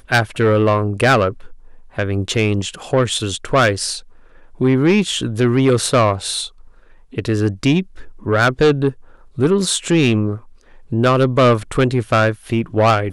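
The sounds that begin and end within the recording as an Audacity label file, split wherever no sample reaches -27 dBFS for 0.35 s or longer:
1.980000	3.990000	sound
4.610000	6.470000	sound
7.140000	8.910000	sound
9.380000	10.370000	sound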